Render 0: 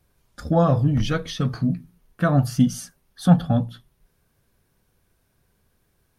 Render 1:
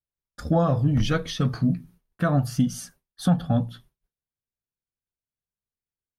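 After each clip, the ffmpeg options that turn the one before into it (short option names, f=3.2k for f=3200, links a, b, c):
-af "agate=range=-33dB:threshold=-44dB:ratio=3:detection=peak,alimiter=limit=-11.5dB:level=0:latency=1:release=298"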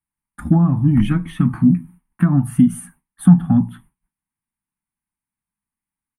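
-filter_complex "[0:a]firequalizer=gain_entry='entry(130,0);entry(190,10);entry(330,3);entry(460,-21);entry(870,9);entry(1400,2);entry(2100,5);entry(5000,-27);entry(9300,9);entry(13000,-4)':delay=0.05:min_phase=1,acrossover=split=470[a][b];[b]acompressor=threshold=-35dB:ratio=6[c];[a][c]amix=inputs=2:normalize=0,volume=3.5dB"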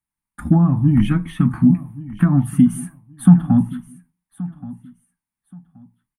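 -af "aecho=1:1:1126|2252:0.126|0.029"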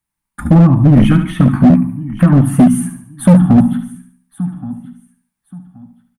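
-af "aecho=1:1:72|144|216|288|360:0.355|0.153|0.0656|0.0282|0.0121,asoftclip=type=hard:threshold=-10.5dB,volume=7.5dB"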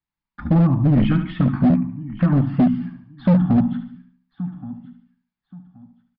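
-af "aresample=11025,aresample=44100,volume=-8dB"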